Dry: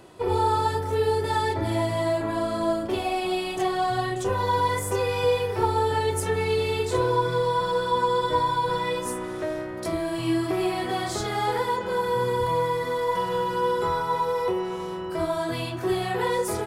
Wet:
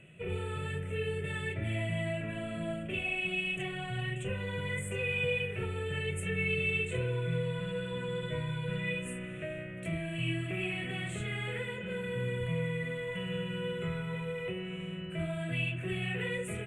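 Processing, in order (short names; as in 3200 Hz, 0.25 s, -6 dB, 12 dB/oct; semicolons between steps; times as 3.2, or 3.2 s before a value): EQ curve 100 Hz 0 dB, 160 Hz +13 dB, 300 Hz -9 dB, 620 Hz -3 dB, 890 Hz -23 dB, 1400 Hz -5 dB, 2700 Hz +13 dB, 5000 Hz -29 dB, 8200 Hz 0 dB, 14000 Hz -20 dB; gain -7 dB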